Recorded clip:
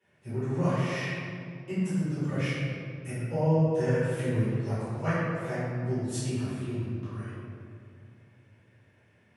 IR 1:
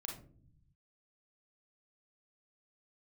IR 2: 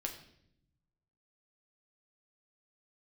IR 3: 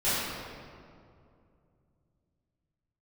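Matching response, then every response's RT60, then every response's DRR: 3; 0.50, 0.70, 2.4 s; 0.5, 1.5, -15.5 dB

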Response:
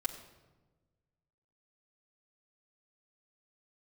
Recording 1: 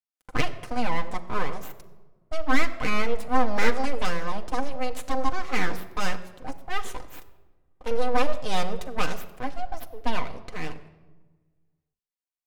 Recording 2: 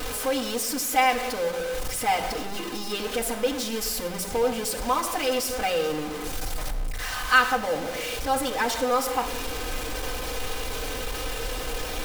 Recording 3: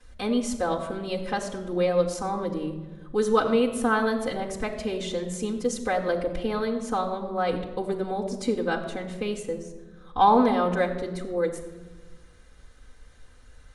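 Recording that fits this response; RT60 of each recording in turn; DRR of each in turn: 2; 1.2, 1.2, 1.2 s; 3.5, -3.5, -10.0 dB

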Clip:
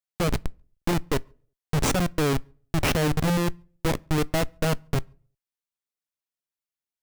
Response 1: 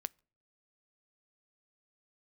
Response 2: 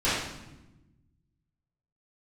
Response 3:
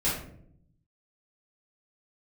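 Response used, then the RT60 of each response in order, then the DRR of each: 1; not exponential, 1.0 s, 0.65 s; 20.0, -14.0, -10.0 dB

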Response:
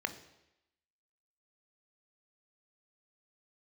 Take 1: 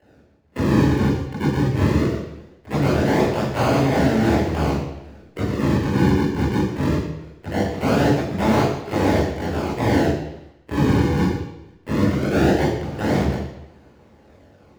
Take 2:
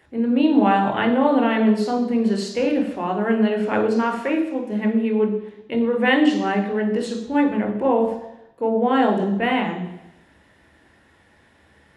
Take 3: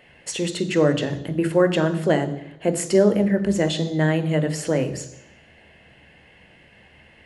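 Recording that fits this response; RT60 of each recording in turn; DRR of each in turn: 3; 0.90, 0.90, 0.90 s; -7.0, 2.0, 9.0 dB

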